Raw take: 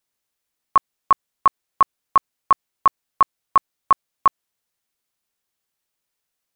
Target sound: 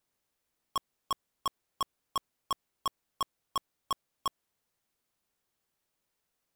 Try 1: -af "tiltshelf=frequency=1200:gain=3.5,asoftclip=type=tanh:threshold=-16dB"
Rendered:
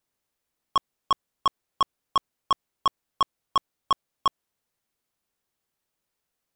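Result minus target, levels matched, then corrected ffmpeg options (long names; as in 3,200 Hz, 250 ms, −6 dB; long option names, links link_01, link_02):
soft clipping: distortion −4 dB
-af "tiltshelf=frequency=1200:gain=3.5,asoftclip=type=tanh:threshold=-27dB"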